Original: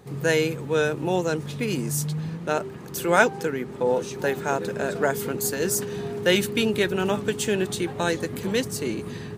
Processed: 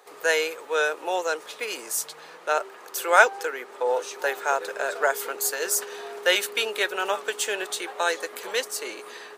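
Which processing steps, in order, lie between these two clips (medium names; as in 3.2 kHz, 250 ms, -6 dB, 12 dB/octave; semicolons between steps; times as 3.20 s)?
high-pass 510 Hz 24 dB/octave; peaking EQ 1.3 kHz +3.5 dB 0.55 oct; trim +1.5 dB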